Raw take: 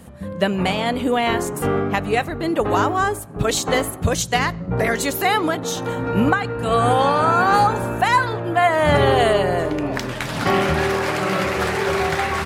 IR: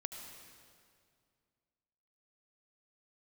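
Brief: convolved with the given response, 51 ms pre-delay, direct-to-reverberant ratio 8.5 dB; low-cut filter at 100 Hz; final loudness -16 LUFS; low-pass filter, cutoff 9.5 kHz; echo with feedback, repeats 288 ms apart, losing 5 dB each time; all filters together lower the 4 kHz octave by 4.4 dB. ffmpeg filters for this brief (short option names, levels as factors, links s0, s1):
-filter_complex "[0:a]highpass=100,lowpass=9500,equalizer=f=4000:t=o:g=-6,aecho=1:1:288|576|864|1152|1440|1728|2016:0.562|0.315|0.176|0.0988|0.0553|0.031|0.0173,asplit=2[s0][s1];[1:a]atrim=start_sample=2205,adelay=51[s2];[s1][s2]afir=irnorm=-1:irlink=0,volume=0.447[s3];[s0][s3]amix=inputs=2:normalize=0,volume=1.19"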